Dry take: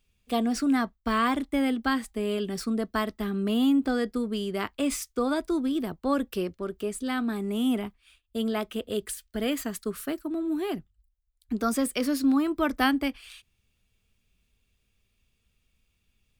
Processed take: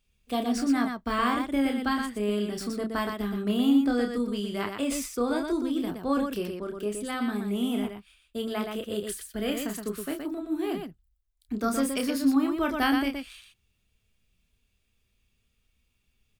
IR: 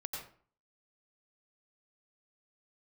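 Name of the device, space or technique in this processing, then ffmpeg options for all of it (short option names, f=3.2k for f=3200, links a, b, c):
slapback doubling: -filter_complex "[0:a]asplit=3[a][b][c];[b]adelay=29,volume=-5.5dB[d];[c]adelay=120,volume=-5dB[e];[a][d][e]amix=inputs=3:normalize=0,volume=-2.5dB"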